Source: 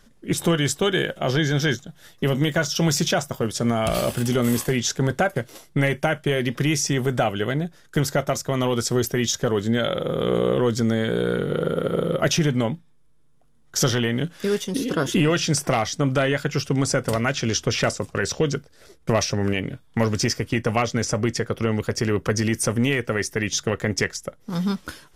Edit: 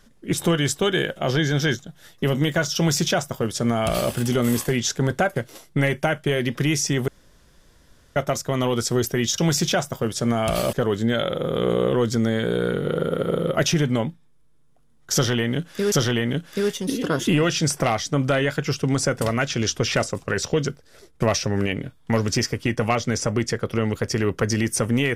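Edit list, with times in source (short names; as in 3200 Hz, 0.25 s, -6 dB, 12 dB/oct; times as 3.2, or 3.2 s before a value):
2.77–4.12 copy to 9.38
7.08–8.16 room tone
13.79–14.57 loop, 2 plays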